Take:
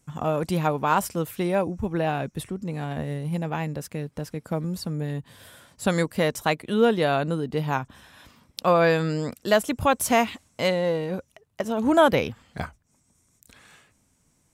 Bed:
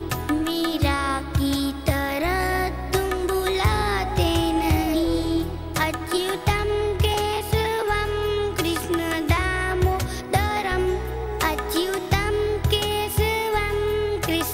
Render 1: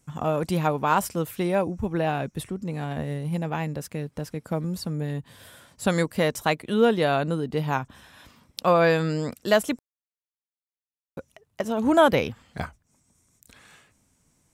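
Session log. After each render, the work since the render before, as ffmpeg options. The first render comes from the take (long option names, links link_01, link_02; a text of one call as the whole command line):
ffmpeg -i in.wav -filter_complex "[0:a]asplit=3[link_01][link_02][link_03];[link_01]atrim=end=9.79,asetpts=PTS-STARTPTS,afade=type=out:start_time=9.786:duration=0.004:curve=hsin[link_04];[link_02]atrim=start=9.79:end=11.17,asetpts=PTS-STARTPTS,volume=0[link_05];[link_03]atrim=start=11.17,asetpts=PTS-STARTPTS,afade=type=in:duration=0.004:curve=hsin[link_06];[link_04][link_05][link_06]concat=n=3:v=0:a=1" out.wav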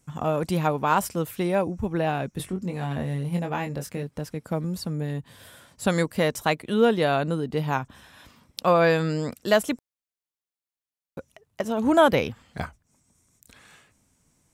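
ffmpeg -i in.wav -filter_complex "[0:a]asettb=1/sr,asplit=3[link_01][link_02][link_03];[link_01]atrim=end=2.364[link_04];[link_02]atrim=start=2.36:end=4.03,asetpts=PTS-STARTPTS,afade=type=in:duration=0.004:curve=qsin,afade=type=out:start_time=1.666:duration=0.004:curve=qsin,asplit=2[link_05][link_06];[link_06]adelay=22,volume=-5.5dB[link_07];[link_05][link_07]amix=inputs=2:normalize=0,atrim=end_sample=73647[link_08];[link_03]atrim=start=4.026[link_09];[link_04][link_08]acrossfade=duration=0.004:curve1=hsin:curve2=qsin[link_10];[link_10][link_09]acrossfade=duration=0.004:curve1=qsin:curve2=hsin" out.wav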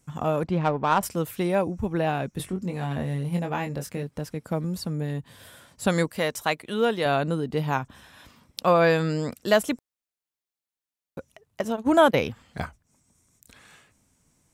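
ffmpeg -i in.wav -filter_complex "[0:a]asettb=1/sr,asplit=3[link_01][link_02][link_03];[link_01]atrim=end=0.434[link_04];[link_02]atrim=start=0.43:end=1.03,asetpts=PTS-STARTPTS,afade=type=in:duration=0.004:curve=qsin,afade=type=out:start_time=0.596:duration=0.004:curve=qsin,adynamicsmooth=sensitivity=1.5:basefreq=1800[link_05];[link_03]atrim=start=1.026[link_06];[link_04][link_05]acrossfade=duration=0.004:curve1=hsin:curve2=qsin[link_07];[link_07][link_06]acrossfade=duration=0.004:curve1=qsin:curve2=hsin,asettb=1/sr,asplit=3[link_08][link_09][link_10];[link_08]atrim=end=6.094[link_11];[link_09]atrim=start=6.09:end=7.06,asetpts=PTS-STARTPTS,afade=type=in:duration=0.004:curve=qsin,afade=type=out:start_time=0.966:duration=0.004:curve=qsin,lowshelf=frequency=440:gain=-7.5[link_12];[link_10]atrim=start=7.056[link_13];[link_11][link_12]acrossfade=duration=0.004:curve1=hsin:curve2=qsin[link_14];[link_14][link_13]acrossfade=duration=0.004:curve1=qsin:curve2=hsin,asplit=3[link_15][link_16][link_17];[link_15]afade=type=out:start_time=11.75:duration=0.02[link_18];[link_16]agate=range=-23dB:threshold=-24dB:ratio=16:release=100:detection=peak,afade=type=in:start_time=11.75:duration=0.02,afade=type=out:start_time=12.18:duration=0.02[link_19];[link_17]afade=type=in:start_time=12.18:duration=0.02[link_20];[link_18][link_19][link_20]amix=inputs=3:normalize=0" out.wav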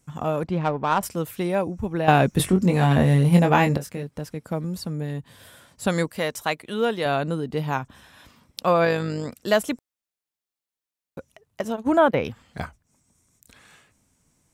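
ffmpeg -i in.wav -filter_complex "[0:a]asplit=3[link_01][link_02][link_03];[link_01]afade=type=out:start_time=8.84:duration=0.02[link_04];[link_02]tremolo=f=51:d=0.4,afade=type=in:start_time=8.84:duration=0.02,afade=type=out:start_time=9.35:duration=0.02[link_05];[link_03]afade=type=in:start_time=9.35:duration=0.02[link_06];[link_04][link_05][link_06]amix=inputs=3:normalize=0,asettb=1/sr,asplit=3[link_07][link_08][link_09];[link_07]atrim=end=11.744[link_10];[link_08]atrim=start=11.74:end=12.25,asetpts=PTS-STARTPTS,afade=type=in:duration=0.004:curve=qsin,afade=type=out:start_time=0.506:duration=0.004:curve=qsin,acrossover=split=2700[link_11][link_12];[link_12]acompressor=threshold=-49dB:ratio=4:attack=1:release=60[link_13];[link_11][link_13]amix=inputs=2:normalize=0[link_14];[link_09]atrim=start=12.246[link_15];[link_10][link_14]acrossfade=duration=0.004:curve1=hsin:curve2=qsin[link_16];[link_16][link_15]acrossfade=duration=0.004:curve1=qsin:curve2=hsin,asplit=3[link_17][link_18][link_19];[link_17]atrim=end=2.082[link_20];[link_18]atrim=start=2.078:end=3.772,asetpts=PTS-STARTPTS,volume=11dB[link_21];[link_19]atrim=start=3.768[link_22];[link_20][link_21]acrossfade=duration=0.004:curve1=hsin:curve2=hsin[link_23];[link_23][link_22]acrossfade=duration=0.004:curve1=hsin:curve2=hsin" out.wav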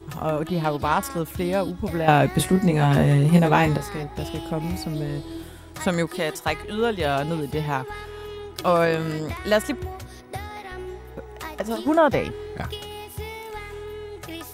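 ffmpeg -i in.wav -i bed.wav -filter_complex "[1:a]volume=-12.5dB[link_01];[0:a][link_01]amix=inputs=2:normalize=0" out.wav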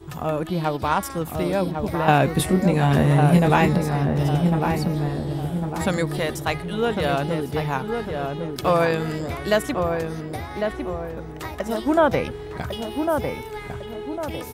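ffmpeg -i in.wav -filter_complex "[0:a]asplit=2[link_01][link_02];[link_02]adelay=1102,lowpass=frequency=1300:poles=1,volume=-4dB,asplit=2[link_03][link_04];[link_04]adelay=1102,lowpass=frequency=1300:poles=1,volume=0.47,asplit=2[link_05][link_06];[link_06]adelay=1102,lowpass=frequency=1300:poles=1,volume=0.47,asplit=2[link_07][link_08];[link_08]adelay=1102,lowpass=frequency=1300:poles=1,volume=0.47,asplit=2[link_09][link_10];[link_10]adelay=1102,lowpass=frequency=1300:poles=1,volume=0.47,asplit=2[link_11][link_12];[link_12]adelay=1102,lowpass=frequency=1300:poles=1,volume=0.47[link_13];[link_01][link_03][link_05][link_07][link_09][link_11][link_13]amix=inputs=7:normalize=0" out.wav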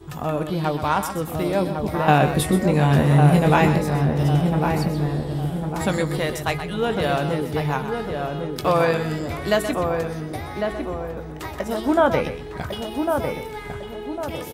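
ffmpeg -i in.wav -filter_complex "[0:a]asplit=2[link_01][link_02];[link_02]adelay=20,volume=-12dB[link_03];[link_01][link_03]amix=inputs=2:normalize=0,asplit=2[link_04][link_05];[link_05]aecho=0:1:126:0.316[link_06];[link_04][link_06]amix=inputs=2:normalize=0" out.wav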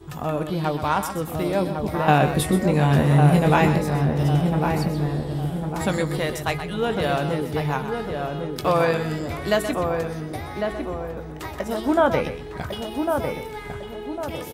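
ffmpeg -i in.wav -af "volume=-1dB" out.wav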